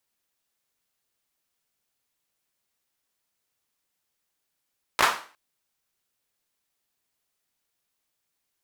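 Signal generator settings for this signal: hand clap length 0.36 s, bursts 3, apart 17 ms, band 1.1 kHz, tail 0.40 s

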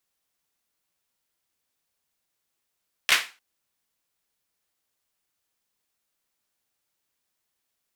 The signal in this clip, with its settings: hand clap length 0.30 s, bursts 3, apart 14 ms, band 2.1 kHz, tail 0.31 s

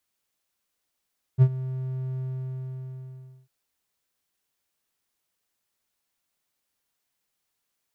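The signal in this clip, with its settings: ADSR triangle 130 Hz, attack 39 ms, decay 62 ms, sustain -17.5 dB, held 0.81 s, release 1290 ms -8.5 dBFS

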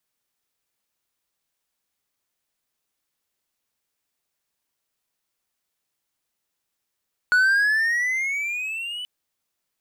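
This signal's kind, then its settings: gliding synth tone triangle, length 1.73 s, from 1.46 kHz, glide +12.5 st, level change -15.5 dB, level -12 dB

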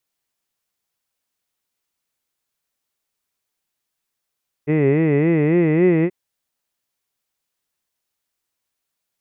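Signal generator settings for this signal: formant-synthesis vowel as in hid, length 1.43 s, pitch 143 Hz, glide +3.5 st, vibrato 3.6 Hz, vibrato depth 1.45 st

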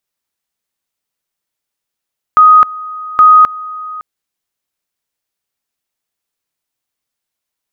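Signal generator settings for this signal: two-level tone 1.25 kHz -1.5 dBFS, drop 20 dB, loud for 0.26 s, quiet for 0.56 s, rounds 2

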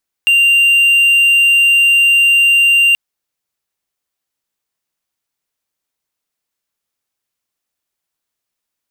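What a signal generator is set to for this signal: tone triangle 2.78 kHz -5 dBFS 2.68 s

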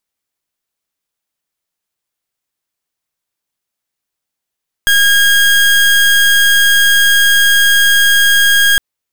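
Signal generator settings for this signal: pulse 1.63 kHz, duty 30% -9 dBFS 3.91 s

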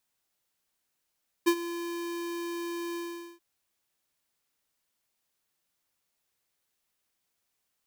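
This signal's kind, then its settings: ADSR square 342 Hz, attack 18 ms, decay 69 ms, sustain -15 dB, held 1.50 s, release 433 ms -20 dBFS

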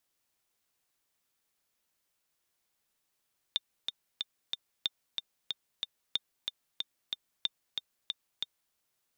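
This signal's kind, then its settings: metronome 185 bpm, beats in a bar 4, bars 4, 3.61 kHz, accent 4.5 dB -15.5 dBFS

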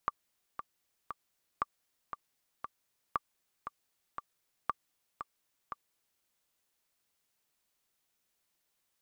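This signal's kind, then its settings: metronome 117 bpm, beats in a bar 3, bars 4, 1.17 kHz, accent 9 dB -16.5 dBFS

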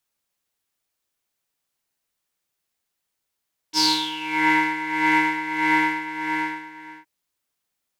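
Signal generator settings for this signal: synth patch with tremolo D#4, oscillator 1 triangle, oscillator 2 sine, interval +19 st, detune 18 cents, oscillator 2 level -11.5 dB, sub -16.5 dB, noise -24 dB, filter bandpass, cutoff 1.9 kHz, Q 8.4, filter envelope 1.5 oct, filter decay 0.68 s, filter sustain 5%, attack 46 ms, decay 0.22 s, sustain -7 dB, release 1.38 s, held 1.94 s, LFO 1.6 Hz, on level 11 dB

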